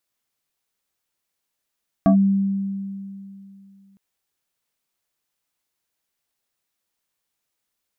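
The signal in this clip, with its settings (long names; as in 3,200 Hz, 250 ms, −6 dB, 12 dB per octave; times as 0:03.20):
two-operator FM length 1.91 s, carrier 196 Hz, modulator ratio 2.41, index 1.2, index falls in 0.10 s linear, decay 2.75 s, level −10 dB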